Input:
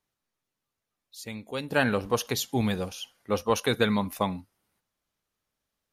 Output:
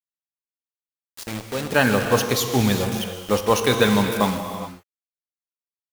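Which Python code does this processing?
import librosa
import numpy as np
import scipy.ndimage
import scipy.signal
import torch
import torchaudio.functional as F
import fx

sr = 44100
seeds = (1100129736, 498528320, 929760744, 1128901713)

y = fx.high_shelf(x, sr, hz=2200.0, db=-10.0, at=(1.25, 1.65))
y = fx.quant_dither(y, sr, seeds[0], bits=6, dither='none')
y = fx.rev_gated(y, sr, seeds[1], gate_ms=440, shape='flat', drr_db=5.0)
y = y * 10.0 ** (6.0 / 20.0)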